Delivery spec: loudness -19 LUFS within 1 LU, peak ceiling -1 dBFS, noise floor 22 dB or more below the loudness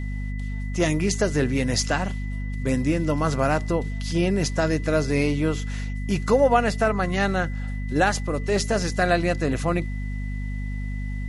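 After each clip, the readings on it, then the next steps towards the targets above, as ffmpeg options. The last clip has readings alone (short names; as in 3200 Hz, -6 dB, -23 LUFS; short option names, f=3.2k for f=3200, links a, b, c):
hum 50 Hz; harmonics up to 250 Hz; hum level -26 dBFS; steady tone 2000 Hz; tone level -42 dBFS; loudness -24.0 LUFS; peak -6.5 dBFS; loudness target -19.0 LUFS
-> -af "bandreject=f=50:t=h:w=6,bandreject=f=100:t=h:w=6,bandreject=f=150:t=h:w=6,bandreject=f=200:t=h:w=6,bandreject=f=250:t=h:w=6"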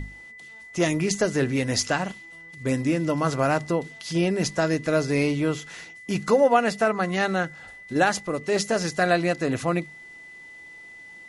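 hum none; steady tone 2000 Hz; tone level -42 dBFS
-> -af "bandreject=f=2k:w=30"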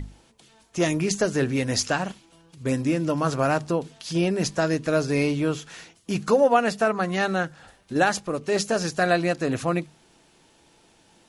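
steady tone none; loudness -24.5 LUFS; peak -7.0 dBFS; loudness target -19.0 LUFS
-> -af "volume=5.5dB"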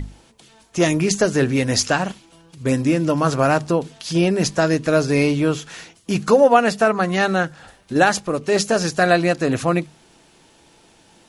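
loudness -19.0 LUFS; peak -1.5 dBFS; noise floor -53 dBFS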